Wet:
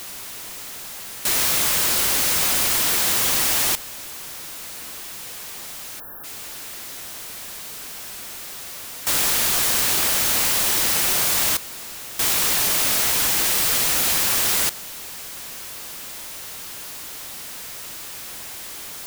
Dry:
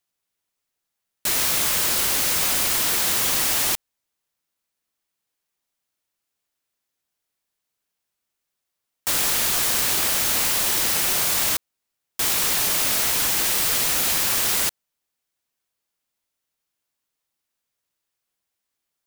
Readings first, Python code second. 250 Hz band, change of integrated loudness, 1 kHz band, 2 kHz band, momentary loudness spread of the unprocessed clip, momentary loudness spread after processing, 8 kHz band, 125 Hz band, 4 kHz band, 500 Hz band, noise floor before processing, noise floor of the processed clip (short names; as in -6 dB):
+1.5 dB, +1.5 dB, +1.5 dB, +1.5 dB, 4 LU, 15 LU, +1.5 dB, +1.5 dB, +1.5 dB, +1.5 dB, -82 dBFS, -35 dBFS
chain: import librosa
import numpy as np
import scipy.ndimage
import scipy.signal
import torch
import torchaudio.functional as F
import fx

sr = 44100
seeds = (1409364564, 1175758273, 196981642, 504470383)

y = x + 0.5 * 10.0 ** (-28.5 / 20.0) * np.sign(x)
y = fx.spec_erase(y, sr, start_s=6.0, length_s=0.24, low_hz=1800.0, high_hz=11000.0)